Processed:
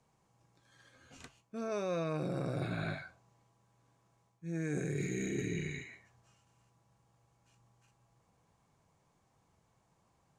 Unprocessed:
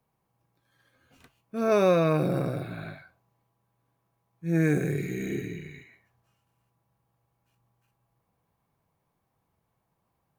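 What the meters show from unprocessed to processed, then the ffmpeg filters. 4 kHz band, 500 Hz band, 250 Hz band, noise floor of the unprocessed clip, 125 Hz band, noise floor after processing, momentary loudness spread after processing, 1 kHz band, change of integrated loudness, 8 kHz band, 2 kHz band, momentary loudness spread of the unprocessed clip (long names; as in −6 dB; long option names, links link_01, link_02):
−6.0 dB, −12.0 dB, −9.5 dB, −77 dBFS, −8.5 dB, −74 dBFS, 17 LU, −11.5 dB, −11.5 dB, −1.0 dB, −6.5 dB, 18 LU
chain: -af "areverse,acompressor=threshold=-36dB:ratio=16,areverse,lowpass=frequency=7200:width_type=q:width=2.6,volume=3.5dB"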